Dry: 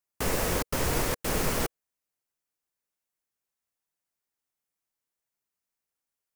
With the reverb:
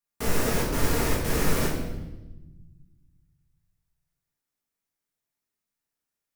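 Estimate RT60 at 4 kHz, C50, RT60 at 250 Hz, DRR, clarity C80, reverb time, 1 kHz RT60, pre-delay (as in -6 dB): 0.90 s, 3.0 dB, 1.9 s, -5.5 dB, 5.5 dB, 1.1 s, 0.90 s, 4 ms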